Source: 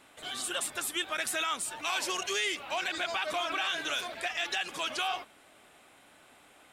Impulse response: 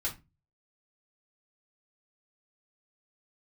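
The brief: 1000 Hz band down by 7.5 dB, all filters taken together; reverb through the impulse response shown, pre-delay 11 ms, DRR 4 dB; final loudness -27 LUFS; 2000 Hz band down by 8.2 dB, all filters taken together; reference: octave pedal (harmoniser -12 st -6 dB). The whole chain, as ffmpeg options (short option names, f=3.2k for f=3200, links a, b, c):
-filter_complex "[0:a]equalizer=f=1k:t=o:g=-8.5,equalizer=f=2k:t=o:g=-9,asplit=2[a][b];[1:a]atrim=start_sample=2205,adelay=11[c];[b][c]afir=irnorm=-1:irlink=0,volume=-7.5dB[d];[a][d]amix=inputs=2:normalize=0,asplit=2[e][f];[f]asetrate=22050,aresample=44100,atempo=2,volume=-6dB[g];[e][g]amix=inputs=2:normalize=0,volume=7dB"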